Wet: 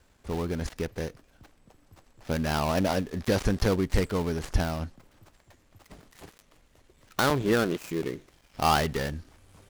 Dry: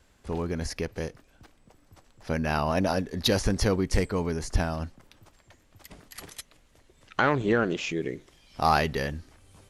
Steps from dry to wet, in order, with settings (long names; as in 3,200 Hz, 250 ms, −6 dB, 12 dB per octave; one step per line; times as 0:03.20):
gap after every zero crossing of 0.17 ms
regular buffer underruns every 0.73 s, samples 64, repeat, from 0:00.73